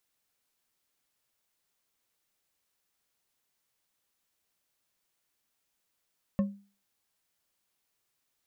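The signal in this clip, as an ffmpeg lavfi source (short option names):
-f lavfi -i "aevalsrc='0.0944*pow(10,-3*t/0.37)*sin(2*PI*200*t)+0.0335*pow(10,-3*t/0.182)*sin(2*PI*551.4*t)+0.0119*pow(10,-3*t/0.114)*sin(2*PI*1080.8*t)+0.00422*pow(10,-3*t/0.08)*sin(2*PI*1786.6*t)+0.0015*pow(10,-3*t/0.06)*sin(2*PI*2668*t)':d=0.89:s=44100"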